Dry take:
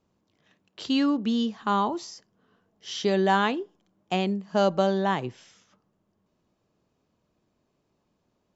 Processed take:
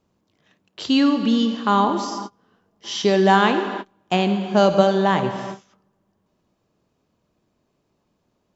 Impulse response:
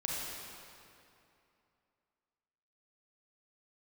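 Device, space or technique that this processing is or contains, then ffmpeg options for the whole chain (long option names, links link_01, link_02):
keyed gated reverb: -filter_complex "[0:a]asplit=3[link_01][link_02][link_03];[1:a]atrim=start_sample=2205[link_04];[link_02][link_04]afir=irnorm=-1:irlink=0[link_05];[link_03]apad=whole_len=377179[link_06];[link_05][link_06]sidechaingate=range=-33dB:threshold=-55dB:ratio=16:detection=peak,volume=-7dB[link_07];[link_01][link_07]amix=inputs=2:normalize=0,volume=3.5dB"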